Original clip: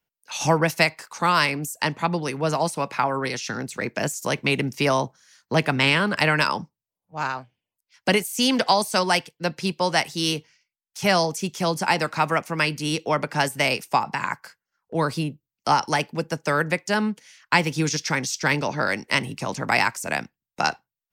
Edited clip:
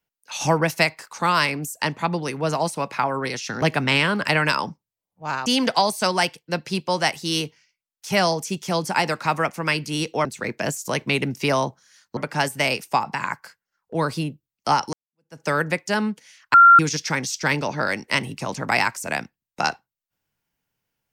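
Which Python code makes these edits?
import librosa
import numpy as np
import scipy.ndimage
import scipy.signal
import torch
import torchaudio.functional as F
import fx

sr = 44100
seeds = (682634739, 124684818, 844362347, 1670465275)

y = fx.edit(x, sr, fx.move(start_s=3.62, length_s=1.92, to_s=13.17),
    fx.cut(start_s=7.38, length_s=1.0),
    fx.fade_in_span(start_s=15.93, length_s=0.48, curve='exp'),
    fx.bleep(start_s=17.54, length_s=0.25, hz=1380.0, db=-6.5), tone=tone)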